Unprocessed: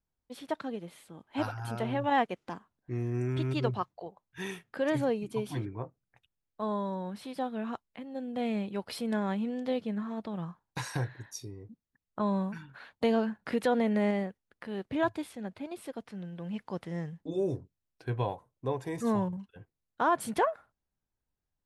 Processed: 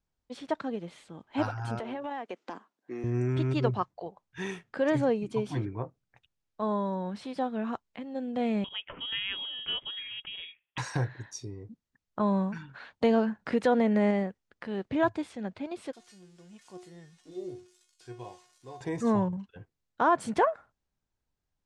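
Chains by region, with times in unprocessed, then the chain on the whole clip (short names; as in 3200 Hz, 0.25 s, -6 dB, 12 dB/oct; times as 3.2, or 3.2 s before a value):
1.79–3.04 HPF 240 Hz 24 dB/oct + compressor 8:1, threshold -35 dBFS
8.64–10.78 HPF 330 Hz 6 dB/oct + inverted band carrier 3500 Hz
15.93–18.81 switching spikes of -32 dBFS + resonator 360 Hz, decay 0.4 s, mix 90%
whole clip: LPF 7800 Hz 24 dB/oct; dynamic EQ 3600 Hz, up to -4 dB, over -52 dBFS, Q 0.99; gain +3 dB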